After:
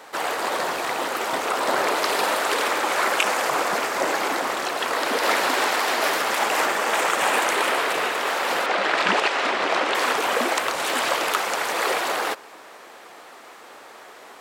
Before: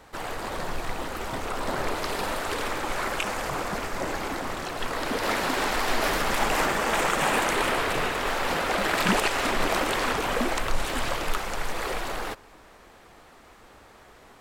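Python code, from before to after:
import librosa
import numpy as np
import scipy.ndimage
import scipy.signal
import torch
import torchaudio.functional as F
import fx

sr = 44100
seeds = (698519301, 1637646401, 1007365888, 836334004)

y = fx.lowpass(x, sr, hz=4900.0, slope=12, at=(8.66, 9.95))
y = fx.rider(y, sr, range_db=3, speed_s=2.0)
y = scipy.signal.sosfilt(scipy.signal.butter(2, 390.0, 'highpass', fs=sr, output='sos'), y)
y = y * librosa.db_to_amplitude(6.0)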